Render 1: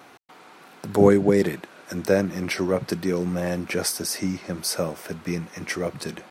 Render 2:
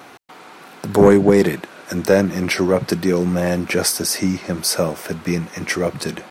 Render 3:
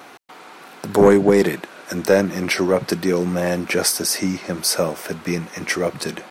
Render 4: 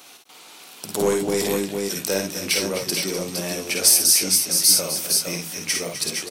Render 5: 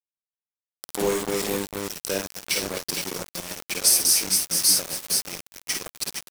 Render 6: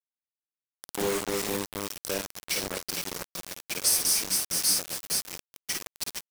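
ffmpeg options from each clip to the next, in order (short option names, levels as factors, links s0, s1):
-af "acontrast=89"
-af "equalizer=f=70:w=0.48:g=-7.5"
-af "aecho=1:1:52|65|254|270|461|481:0.596|0.335|0.251|0.1|0.501|0.376,aexciter=amount=4.6:drive=5.4:freq=2500,volume=0.282"
-af "aeval=exprs='val(0)*gte(abs(val(0)),0.0794)':c=same,volume=0.708"
-af "acrusher=bits=3:mix=0:aa=0.000001,volume=0.501"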